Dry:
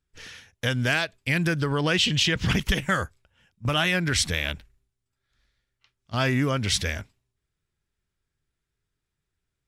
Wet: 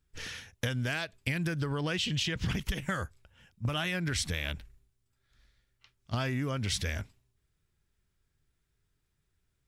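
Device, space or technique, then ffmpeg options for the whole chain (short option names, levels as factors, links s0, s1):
ASMR close-microphone chain: -af "lowshelf=f=180:g=4.5,acompressor=threshold=0.0282:ratio=6,highshelf=f=9900:g=3.5,volume=1.19"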